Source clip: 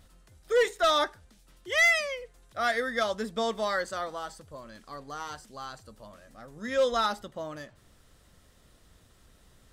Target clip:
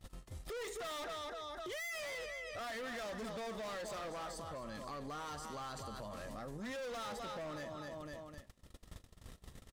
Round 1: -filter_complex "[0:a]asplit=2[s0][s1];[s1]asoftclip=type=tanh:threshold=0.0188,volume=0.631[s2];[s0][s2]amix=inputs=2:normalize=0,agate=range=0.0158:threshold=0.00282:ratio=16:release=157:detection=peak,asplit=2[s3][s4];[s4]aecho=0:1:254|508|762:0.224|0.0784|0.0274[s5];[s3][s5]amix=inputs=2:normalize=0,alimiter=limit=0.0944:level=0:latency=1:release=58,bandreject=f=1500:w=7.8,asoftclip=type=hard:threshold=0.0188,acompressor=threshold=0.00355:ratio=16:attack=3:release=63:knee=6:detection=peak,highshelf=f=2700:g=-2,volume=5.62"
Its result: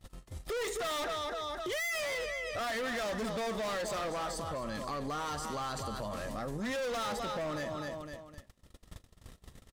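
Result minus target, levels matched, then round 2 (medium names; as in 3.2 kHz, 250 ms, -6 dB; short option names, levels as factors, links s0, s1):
compression: peak gain reduction -8 dB; saturation: distortion +10 dB
-filter_complex "[0:a]asplit=2[s0][s1];[s1]asoftclip=type=tanh:threshold=0.075,volume=0.631[s2];[s0][s2]amix=inputs=2:normalize=0,agate=range=0.0158:threshold=0.00282:ratio=16:release=157:detection=peak,asplit=2[s3][s4];[s4]aecho=0:1:254|508|762:0.224|0.0784|0.0274[s5];[s3][s5]amix=inputs=2:normalize=0,alimiter=limit=0.0944:level=0:latency=1:release=58,bandreject=f=1500:w=7.8,asoftclip=type=hard:threshold=0.0188,acompressor=threshold=0.00133:ratio=16:attack=3:release=63:knee=6:detection=peak,highshelf=f=2700:g=-2,volume=5.62"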